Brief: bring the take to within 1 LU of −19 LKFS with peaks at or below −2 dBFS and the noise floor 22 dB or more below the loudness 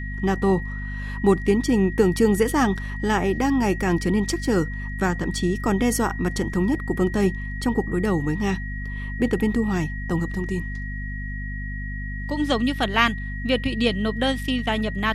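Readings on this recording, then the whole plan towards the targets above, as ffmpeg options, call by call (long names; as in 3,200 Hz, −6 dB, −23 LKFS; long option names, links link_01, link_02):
mains hum 50 Hz; hum harmonics up to 250 Hz; level of the hum −28 dBFS; interfering tone 1,900 Hz; level of the tone −35 dBFS; integrated loudness −23.5 LKFS; sample peak −3.5 dBFS; target loudness −19.0 LKFS
→ -af "bandreject=frequency=50:width_type=h:width=6,bandreject=frequency=100:width_type=h:width=6,bandreject=frequency=150:width_type=h:width=6,bandreject=frequency=200:width_type=h:width=6,bandreject=frequency=250:width_type=h:width=6"
-af "bandreject=frequency=1900:width=30"
-af "volume=4.5dB,alimiter=limit=-2dB:level=0:latency=1"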